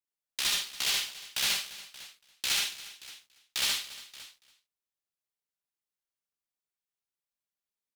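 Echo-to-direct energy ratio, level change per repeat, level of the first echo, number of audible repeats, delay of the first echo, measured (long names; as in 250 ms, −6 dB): 0.0 dB, repeats not evenly spaced, −3.5 dB, 7, 73 ms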